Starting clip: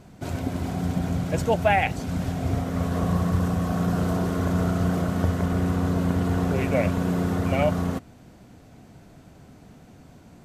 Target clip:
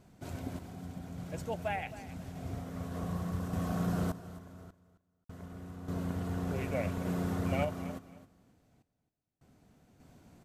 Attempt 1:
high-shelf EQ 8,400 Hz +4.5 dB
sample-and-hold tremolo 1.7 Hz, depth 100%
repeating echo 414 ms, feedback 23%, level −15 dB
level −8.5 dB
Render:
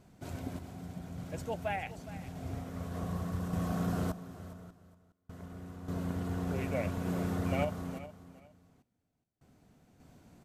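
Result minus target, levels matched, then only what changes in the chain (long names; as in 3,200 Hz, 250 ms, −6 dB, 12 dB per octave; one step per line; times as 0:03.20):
echo 146 ms late
change: repeating echo 268 ms, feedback 23%, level −15 dB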